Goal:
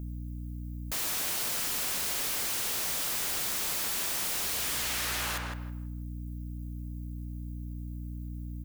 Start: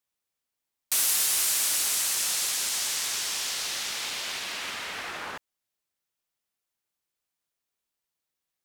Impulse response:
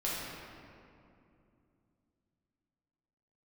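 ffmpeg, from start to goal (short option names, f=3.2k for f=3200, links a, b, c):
-filter_complex "[0:a]aemphasis=mode=production:type=riaa,acrossover=split=630|1900[a][b][c];[c]aeval=exprs='(mod(3.35*val(0)+1,2)-1)/3.35':c=same[d];[a][b][d]amix=inputs=3:normalize=0,asplit=2[e][f];[f]adelay=160,lowpass=f=2.1k:p=1,volume=-4.5dB,asplit=2[g][h];[h]adelay=160,lowpass=f=2.1k:p=1,volume=0.26,asplit=2[i][j];[j]adelay=160,lowpass=f=2.1k:p=1,volume=0.26,asplit=2[k][l];[l]adelay=160,lowpass=f=2.1k:p=1,volume=0.26[m];[e][g][i][k][m]amix=inputs=5:normalize=0,aeval=exprs='val(0)+0.0126*(sin(2*PI*60*n/s)+sin(2*PI*2*60*n/s)/2+sin(2*PI*3*60*n/s)/3+sin(2*PI*4*60*n/s)/4+sin(2*PI*5*60*n/s)/5)':c=same,asplit=2[n][o];[1:a]atrim=start_sample=2205,afade=t=out:st=0.41:d=0.01,atrim=end_sample=18522[p];[o][p]afir=irnorm=-1:irlink=0,volume=-24dB[q];[n][q]amix=inputs=2:normalize=0,alimiter=limit=-11.5dB:level=0:latency=1,aeval=exprs='0.0376*(abs(mod(val(0)/0.0376+3,4)-2)-1)':c=same,volume=1.5dB"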